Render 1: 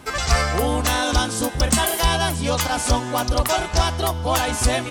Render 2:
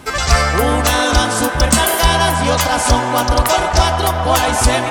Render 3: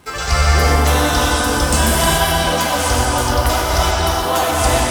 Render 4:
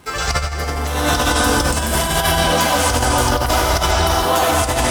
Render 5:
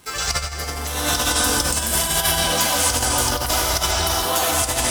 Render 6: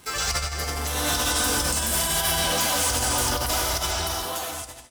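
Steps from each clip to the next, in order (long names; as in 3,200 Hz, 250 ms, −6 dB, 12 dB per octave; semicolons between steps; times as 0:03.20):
delay with a band-pass on its return 130 ms, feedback 84%, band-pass 1,100 Hz, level −7 dB; level +5.5 dB
in parallel at −5.5 dB: bit reduction 5 bits; on the sum: reverb whose tail is shaped and stops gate 450 ms flat, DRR −4.5 dB; level −10.5 dB
compressor whose output falls as the input rises −16 dBFS, ratio −0.5
high-shelf EQ 3,000 Hz +11.5 dB; level −7.5 dB
fade-out on the ending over 1.54 s; soft clipping −19 dBFS, distortion −11 dB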